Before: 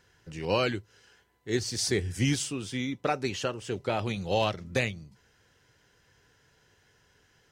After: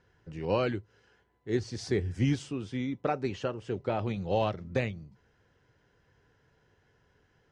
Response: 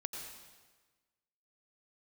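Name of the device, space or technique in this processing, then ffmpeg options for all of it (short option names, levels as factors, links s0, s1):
through cloth: -af "lowpass=6800,highshelf=f=2100:g=-13"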